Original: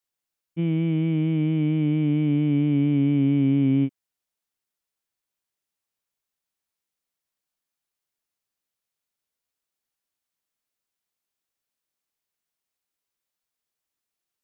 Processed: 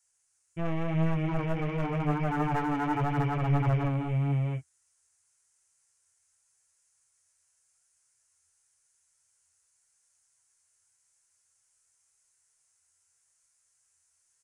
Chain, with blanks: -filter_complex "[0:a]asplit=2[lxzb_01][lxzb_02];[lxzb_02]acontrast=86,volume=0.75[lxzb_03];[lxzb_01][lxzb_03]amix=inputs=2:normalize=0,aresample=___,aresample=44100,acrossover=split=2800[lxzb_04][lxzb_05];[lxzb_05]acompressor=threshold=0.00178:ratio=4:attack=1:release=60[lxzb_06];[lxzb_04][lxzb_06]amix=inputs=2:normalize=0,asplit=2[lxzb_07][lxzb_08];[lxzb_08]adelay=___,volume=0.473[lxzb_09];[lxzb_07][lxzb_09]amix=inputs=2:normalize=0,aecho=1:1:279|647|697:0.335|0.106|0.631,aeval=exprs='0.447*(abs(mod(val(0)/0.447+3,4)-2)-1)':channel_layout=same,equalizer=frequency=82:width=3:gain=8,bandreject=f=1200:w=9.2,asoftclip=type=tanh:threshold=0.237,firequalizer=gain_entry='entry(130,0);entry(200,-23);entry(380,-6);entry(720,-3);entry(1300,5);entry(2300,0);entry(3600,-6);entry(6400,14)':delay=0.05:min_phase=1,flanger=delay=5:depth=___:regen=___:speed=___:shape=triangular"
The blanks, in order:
22050, 24, 6.3, 49, 0.89